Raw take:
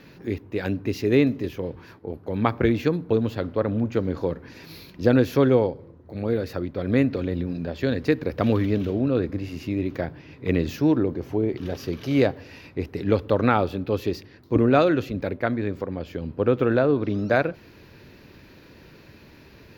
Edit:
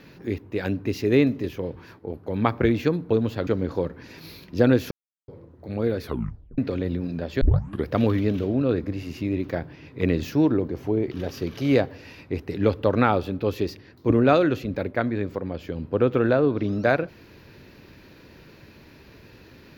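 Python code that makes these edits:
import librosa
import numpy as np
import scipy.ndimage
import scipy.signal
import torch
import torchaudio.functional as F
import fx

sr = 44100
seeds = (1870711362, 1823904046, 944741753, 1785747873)

y = fx.edit(x, sr, fx.cut(start_s=3.47, length_s=0.46),
    fx.silence(start_s=5.37, length_s=0.37),
    fx.tape_stop(start_s=6.46, length_s=0.58),
    fx.tape_start(start_s=7.87, length_s=0.47), tone=tone)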